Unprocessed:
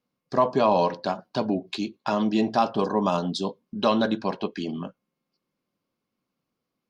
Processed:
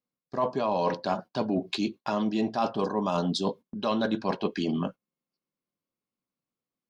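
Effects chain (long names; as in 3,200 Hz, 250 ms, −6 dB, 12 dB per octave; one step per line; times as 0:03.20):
noise gate −42 dBFS, range −16 dB
reversed playback
downward compressor, threshold −29 dBFS, peak gain reduction 13.5 dB
reversed playback
level +5 dB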